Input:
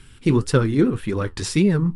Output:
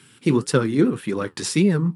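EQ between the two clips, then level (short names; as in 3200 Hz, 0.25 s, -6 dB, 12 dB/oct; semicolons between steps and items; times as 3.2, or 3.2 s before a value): HPF 140 Hz 24 dB/oct; high shelf 9400 Hz +6.5 dB; 0.0 dB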